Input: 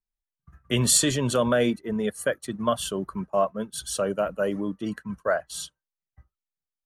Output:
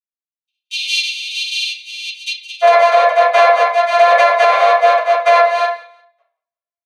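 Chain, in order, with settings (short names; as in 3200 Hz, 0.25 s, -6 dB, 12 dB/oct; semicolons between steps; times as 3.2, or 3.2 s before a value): sample sorter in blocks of 128 samples; steep high-pass 2600 Hz 96 dB/oct, from 2.61 s 500 Hz; gate -55 dBFS, range -25 dB; LPF 8900 Hz 24 dB/oct; bell 6600 Hz -13.5 dB 1.6 oct; comb 6.3 ms, depth 47%; flange 1.2 Hz, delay 4.8 ms, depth 2.8 ms, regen -26%; feedback echo 0.176 s, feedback 26%, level -21 dB; reverb RT60 0.45 s, pre-delay 3 ms, DRR -10.5 dB; maximiser +13.5 dB; gain -1 dB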